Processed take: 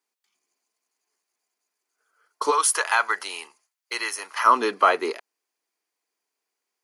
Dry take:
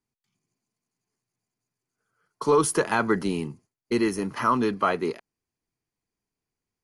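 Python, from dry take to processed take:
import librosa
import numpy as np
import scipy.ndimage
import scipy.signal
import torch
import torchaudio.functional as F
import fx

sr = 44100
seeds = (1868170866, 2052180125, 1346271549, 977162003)

y = fx.bessel_highpass(x, sr, hz=fx.steps((0.0, 560.0), (2.5, 1100.0), (4.45, 550.0)), order=4)
y = y * librosa.db_to_amplitude(7.0)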